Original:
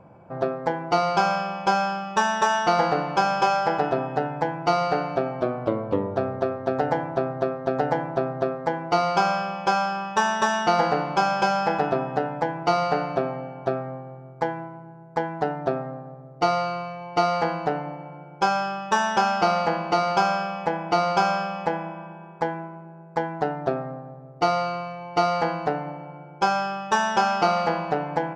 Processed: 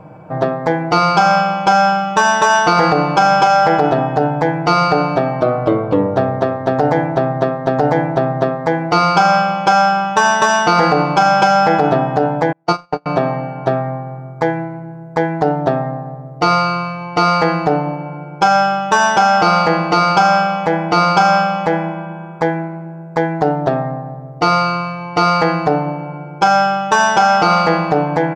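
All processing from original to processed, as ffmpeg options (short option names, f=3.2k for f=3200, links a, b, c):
-filter_complex "[0:a]asettb=1/sr,asplit=3[a][b][c];[a]atrim=end=12.524[d];[b]atrim=start=12.52:end=13.06,asetpts=PTS-STARTPTS,afade=t=in:d=0.004:c=qsin,afade=t=out:st=0.536:d=0.004:c=qsin,highpass=140,equalizer=f=2.1k:t=o:w=1.4:g=-4,agate=range=-41dB:threshold=-21dB:ratio=16:release=100:detection=peak[e];[c]atrim=start=13.056[f];[d][e]acrossfade=d=0.004:c1=hsin:c2=qsin[g];[g][f]acrossfade=d=0.004:c1=qsin:c2=hsin,aecho=1:1:6.5:0.58,alimiter=level_in=11.5dB:limit=-1dB:release=50:level=0:latency=1,volume=-1dB"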